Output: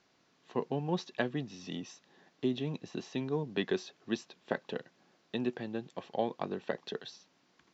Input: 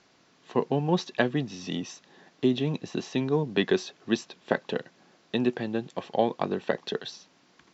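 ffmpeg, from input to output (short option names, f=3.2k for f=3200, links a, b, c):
-af "lowpass=9.1k,volume=-8dB"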